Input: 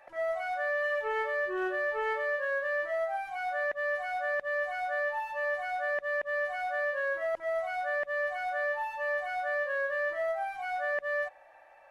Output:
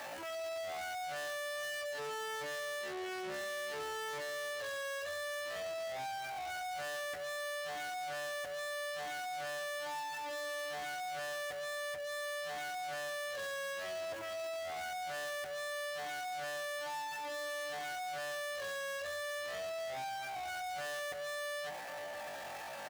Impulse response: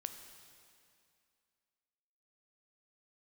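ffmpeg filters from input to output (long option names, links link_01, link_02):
-filter_complex "[0:a]aeval=exprs='val(0)+0.5*0.0075*sgn(val(0))':channel_layout=same,acontrast=36,asplit=2[link_01][link_02];[link_02]adelay=321,lowpass=frequency=2000:poles=1,volume=-17dB,asplit=2[link_03][link_04];[link_04]adelay=321,lowpass=frequency=2000:poles=1,volume=0.27,asplit=2[link_05][link_06];[link_06]adelay=321,lowpass=frequency=2000:poles=1,volume=0.27[link_07];[link_03][link_05][link_07]amix=inputs=3:normalize=0[link_08];[link_01][link_08]amix=inputs=2:normalize=0,aeval=exprs='0.158*(cos(1*acos(clip(val(0)/0.158,-1,1)))-cos(1*PI/2))+0.01*(cos(4*acos(clip(val(0)/0.158,-1,1)))-cos(4*PI/2))+0.0355*(cos(6*acos(clip(val(0)/0.158,-1,1)))-cos(6*PI/2))':channel_layout=same,bandreject=frequency=60:width_type=h:width=6,bandreject=frequency=120:width_type=h:width=6,bandreject=frequency=180:width_type=h:width=6,bandreject=frequency=240:width_type=h:width=6,bandreject=frequency=300:width_type=h:width=6,bandreject=frequency=360:width_type=h:width=6,atempo=0.52,asoftclip=type=tanh:threshold=-35dB,highpass=83,volume=-3dB"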